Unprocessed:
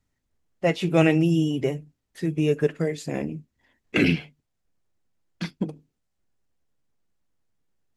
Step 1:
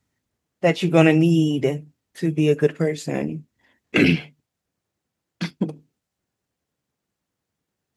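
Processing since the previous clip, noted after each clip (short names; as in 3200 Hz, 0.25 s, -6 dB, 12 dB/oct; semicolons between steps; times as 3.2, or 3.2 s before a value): HPF 85 Hz; gain +4 dB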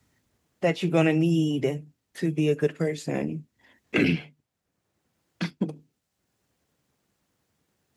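three-band squash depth 40%; gain -5 dB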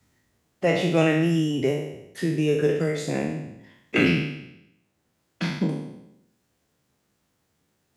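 spectral trails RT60 0.85 s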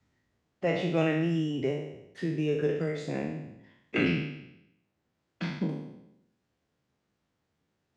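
air absorption 100 m; gain -6 dB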